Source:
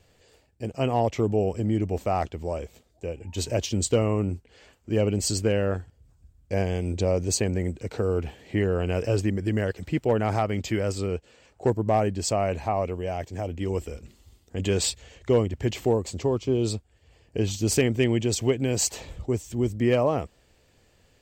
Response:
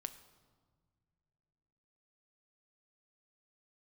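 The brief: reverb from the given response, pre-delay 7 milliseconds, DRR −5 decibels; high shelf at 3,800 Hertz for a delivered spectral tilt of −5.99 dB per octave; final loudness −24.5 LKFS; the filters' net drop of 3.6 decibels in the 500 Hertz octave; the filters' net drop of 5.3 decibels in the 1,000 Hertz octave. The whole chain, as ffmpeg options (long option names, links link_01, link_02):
-filter_complex "[0:a]equalizer=frequency=500:width_type=o:gain=-3,equalizer=frequency=1000:width_type=o:gain=-6,highshelf=frequency=3800:gain=-7,asplit=2[link_01][link_02];[1:a]atrim=start_sample=2205,adelay=7[link_03];[link_02][link_03]afir=irnorm=-1:irlink=0,volume=8dB[link_04];[link_01][link_04]amix=inputs=2:normalize=0,volume=-1.5dB"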